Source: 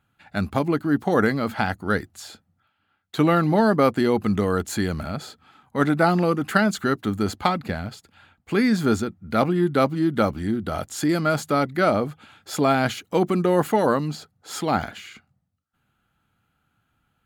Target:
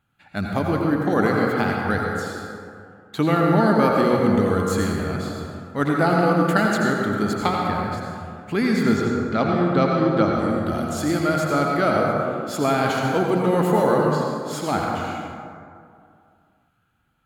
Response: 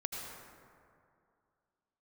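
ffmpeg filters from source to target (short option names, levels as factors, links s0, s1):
-filter_complex "[0:a]asettb=1/sr,asplit=3[s0][s1][s2];[s0]atrim=end=8.834[s3];[s1]atrim=start=8.83:end=10.3,asetpts=PTS-STARTPTS,afade=t=in:d=0.004:c=qsin,afade=t=out:st=1.466:d=0.004:c=qsin,lowpass=f=6700:w=0.5412,lowpass=f=6700:w=1.3066[s4];[s2]atrim=start=10.296[s5];[s3][s4]acrossfade=d=0.004:c1=hsin:c2=qsin[s6];[s6][s5]acrossfade=d=0.004:c1=qsin:c2=hsin[s7];[1:a]atrim=start_sample=2205[s8];[s7][s8]afir=irnorm=-1:irlink=0"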